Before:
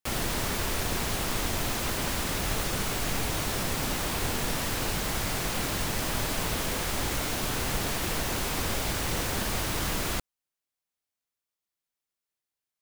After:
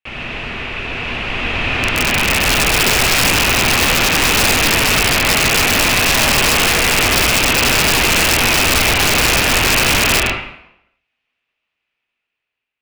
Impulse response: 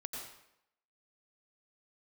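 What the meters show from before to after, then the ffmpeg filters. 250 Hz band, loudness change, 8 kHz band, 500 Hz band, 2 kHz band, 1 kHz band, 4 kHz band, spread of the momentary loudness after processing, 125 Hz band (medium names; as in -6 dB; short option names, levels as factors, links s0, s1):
+12.5 dB, +17.0 dB, +15.5 dB, +14.0 dB, +20.5 dB, +15.0 dB, +18.5 dB, 10 LU, +11.0 dB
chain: -filter_complex "[0:a]dynaudnorm=f=700:g=5:m=5.01,lowpass=f=2600:t=q:w=5.2[s0];[1:a]atrim=start_sample=2205[s1];[s0][s1]afir=irnorm=-1:irlink=0,aeval=exprs='(mod(2.82*val(0)+1,2)-1)/2.82':c=same,volume=1.33"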